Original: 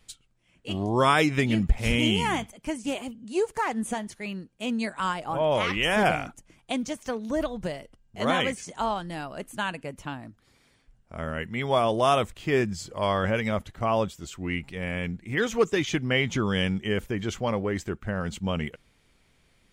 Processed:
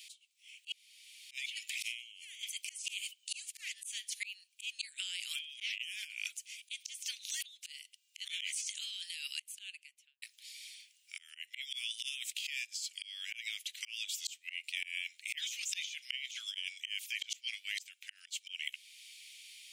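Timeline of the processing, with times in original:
0:00.72–0:01.31: fill with room tone
0:09.31–0:10.22: fade out and dull
0:12.47–0:14.07: fade in linear, from −21.5 dB
whole clip: Butterworth high-pass 2,400 Hz 48 dB per octave; volume swells 613 ms; compressor whose output falls as the input rises −54 dBFS, ratio −1; level +12.5 dB

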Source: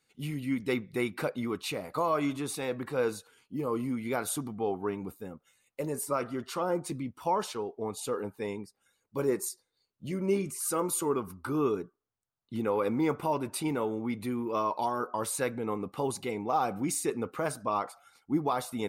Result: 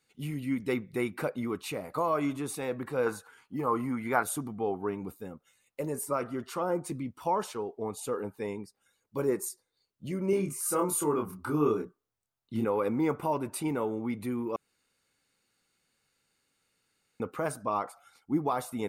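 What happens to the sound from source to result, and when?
0:03.06–0:04.23: flat-topped bell 1,200 Hz +9 dB
0:10.30–0:12.65: double-tracking delay 27 ms −3 dB
0:14.56–0:17.20: fill with room tone
whole clip: dynamic equaliser 4,100 Hz, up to −6 dB, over −54 dBFS, Q 1.1

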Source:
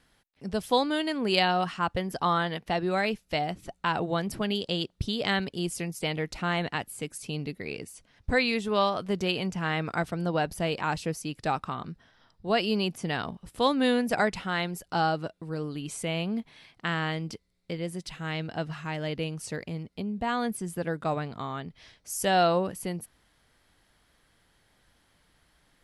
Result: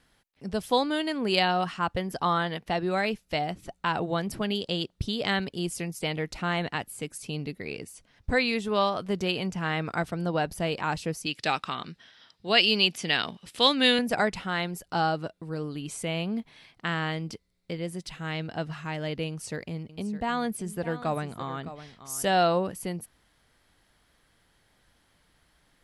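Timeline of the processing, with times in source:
0:11.26–0:13.99: meter weighting curve D
0:19.28–0:22.40: single-tap delay 611 ms −13.5 dB

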